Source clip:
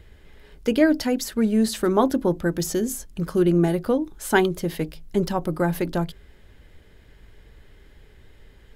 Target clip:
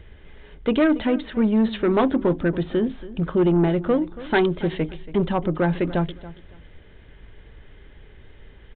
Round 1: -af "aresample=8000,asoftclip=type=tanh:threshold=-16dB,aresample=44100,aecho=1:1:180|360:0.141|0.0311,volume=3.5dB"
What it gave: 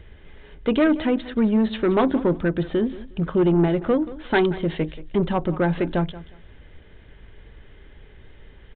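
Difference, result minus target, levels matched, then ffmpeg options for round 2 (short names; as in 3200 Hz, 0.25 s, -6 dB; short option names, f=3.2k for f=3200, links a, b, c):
echo 0.1 s early
-af "aresample=8000,asoftclip=type=tanh:threshold=-16dB,aresample=44100,aecho=1:1:280|560:0.141|0.0311,volume=3.5dB"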